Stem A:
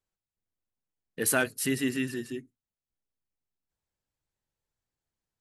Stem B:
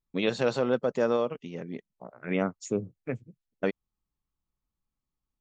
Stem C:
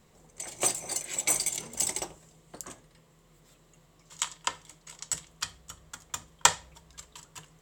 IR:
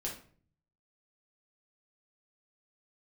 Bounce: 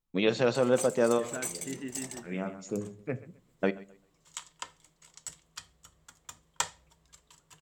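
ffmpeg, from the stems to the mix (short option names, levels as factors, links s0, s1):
-filter_complex "[0:a]deesser=0.95,lowpass=2500,volume=0.299,asplit=2[s0][s1];[1:a]volume=0.944,asplit=3[s2][s3][s4];[s3]volume=0.2[s5];[s4]volume=0.106[s6];[2:a]adelay=150,volume=0.316[s7];[s1]apad=whole_len=242757[s8];[s2][s8]sidechaincompress=threshold=0.00282:ratio=8:attack=16:release=1160[s9];[3:a]atrim=start_sample=2205[s10];[s5][s10]afir=irnorm=-1:irlink=0[s11];[s6]aecho=0:1:131|262|393|524:1|0.26|0.0676|0.0176[s12];[s0][s9][s7][s11][s12]amix=inputs=5:normalize=0"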